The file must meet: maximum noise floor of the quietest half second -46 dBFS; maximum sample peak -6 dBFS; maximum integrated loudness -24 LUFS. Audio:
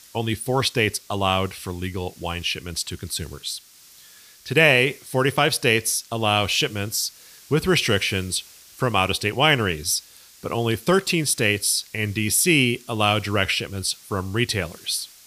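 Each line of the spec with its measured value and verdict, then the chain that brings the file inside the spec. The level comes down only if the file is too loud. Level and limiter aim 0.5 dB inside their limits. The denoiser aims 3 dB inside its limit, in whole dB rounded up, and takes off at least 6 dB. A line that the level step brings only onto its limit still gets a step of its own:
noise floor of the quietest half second -49 dBFS: OK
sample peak -1.5 dBFS: fail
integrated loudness -22.0 LUFS: fail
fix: gain -2.5 dB; limiter -6.5 dBFS

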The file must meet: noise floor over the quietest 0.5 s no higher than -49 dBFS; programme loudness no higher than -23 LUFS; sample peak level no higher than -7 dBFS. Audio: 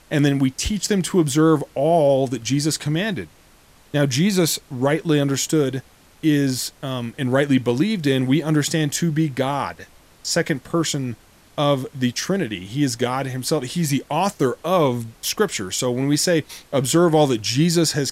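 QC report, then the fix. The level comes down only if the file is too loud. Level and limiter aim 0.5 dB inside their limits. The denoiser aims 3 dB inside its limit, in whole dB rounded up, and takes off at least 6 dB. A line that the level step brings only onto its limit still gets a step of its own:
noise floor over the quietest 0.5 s -51 dBFS: OK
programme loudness -20.5 LUFS: fail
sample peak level -5.0 dBFS: fail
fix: gain -3 dB

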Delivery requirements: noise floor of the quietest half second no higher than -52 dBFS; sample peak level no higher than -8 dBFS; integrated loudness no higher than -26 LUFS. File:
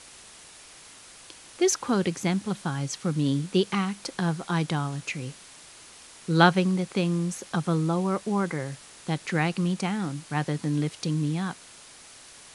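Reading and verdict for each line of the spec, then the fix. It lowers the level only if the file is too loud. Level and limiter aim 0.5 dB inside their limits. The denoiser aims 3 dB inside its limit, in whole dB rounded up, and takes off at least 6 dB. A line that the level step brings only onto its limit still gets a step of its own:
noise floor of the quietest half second -49 dBFS: fail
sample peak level -4.0 dBFS: fail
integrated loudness -27.0 LUFS: OK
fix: denoiser 6 dB, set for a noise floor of -49 dBFS; limiter -8.5 dBFS

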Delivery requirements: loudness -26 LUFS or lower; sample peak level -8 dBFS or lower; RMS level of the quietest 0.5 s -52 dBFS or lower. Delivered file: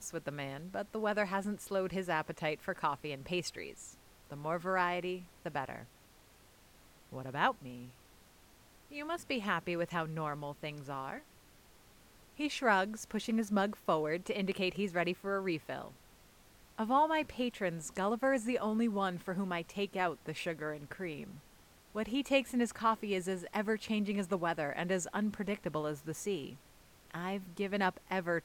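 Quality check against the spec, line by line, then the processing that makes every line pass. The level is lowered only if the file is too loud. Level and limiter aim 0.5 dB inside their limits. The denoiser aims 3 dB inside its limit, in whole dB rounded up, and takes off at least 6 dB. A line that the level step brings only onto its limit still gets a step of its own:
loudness -36.0 LUFS: OK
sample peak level -15.5 dBFS: OK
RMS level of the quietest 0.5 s -62 dBFS: OK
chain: none

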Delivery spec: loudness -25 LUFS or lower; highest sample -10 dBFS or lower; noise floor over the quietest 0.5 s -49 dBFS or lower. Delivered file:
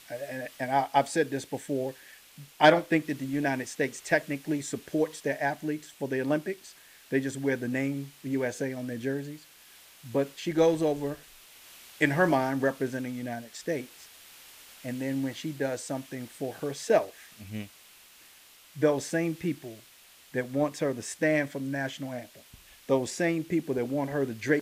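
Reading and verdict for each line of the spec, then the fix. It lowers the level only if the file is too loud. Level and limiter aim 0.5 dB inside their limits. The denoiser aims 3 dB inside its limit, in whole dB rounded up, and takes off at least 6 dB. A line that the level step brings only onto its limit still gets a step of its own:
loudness -29.5 LUFS: OK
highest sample -6.5 dBFS: fail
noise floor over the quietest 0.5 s -56 dBFS: OK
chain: limiter -10.5 dBFS

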